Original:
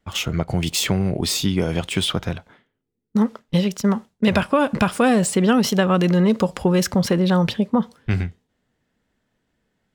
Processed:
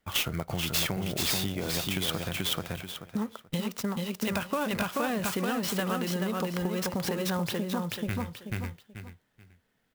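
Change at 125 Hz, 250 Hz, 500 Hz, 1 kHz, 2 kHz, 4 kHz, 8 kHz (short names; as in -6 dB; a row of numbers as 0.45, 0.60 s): -11.5, -12.5, -11.5, -9.5, -6.5, -5.5, -6.5 dB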